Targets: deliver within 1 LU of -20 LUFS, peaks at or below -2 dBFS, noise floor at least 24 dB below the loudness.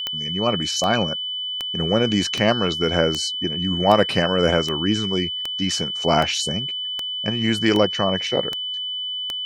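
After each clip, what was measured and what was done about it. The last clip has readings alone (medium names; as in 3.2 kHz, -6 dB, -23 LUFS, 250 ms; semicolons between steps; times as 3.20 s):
clicks found 13; steady tone 3 kHz; tone level -25 dBFS; loudness -21.0 LUFS; peak level -1.5 dBFS; loudness target -20.0 LUFS
-> de-click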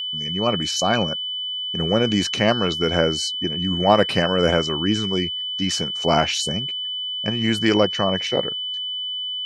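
clicks found 0; steady tone 3 kHz; tone level -25 dBFS
-> band-stop 3 kHz, Q 30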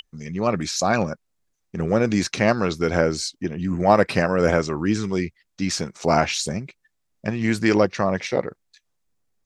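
steady tone not found; loudness -22.5 LUFS; peak level -1.5 dBFS; loudness target -20.0 LUFS
-> trim +2.5 dB; peak limiter -2 dBFS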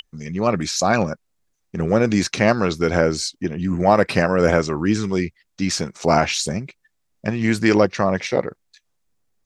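loudness -20.0 LUFS; peak level -2.0 dBFS; noise floor -71 dBFS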